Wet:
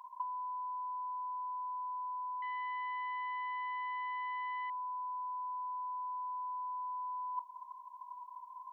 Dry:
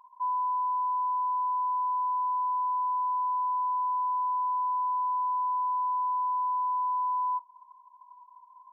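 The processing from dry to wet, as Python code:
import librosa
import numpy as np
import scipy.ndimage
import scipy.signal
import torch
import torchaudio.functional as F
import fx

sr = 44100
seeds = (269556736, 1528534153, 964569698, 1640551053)

y = fx.self_delay(x, sr, depth_ms=0.094, at=(2.42, 4.7))
y = fx.highpass(y, sr, hz=860.0, slope=6)
y = fx.over_compress(y, sr, threshold_db=-36.0, ratio=-0.5)
y = y * 10.0 ** (-1.0 / 20.0)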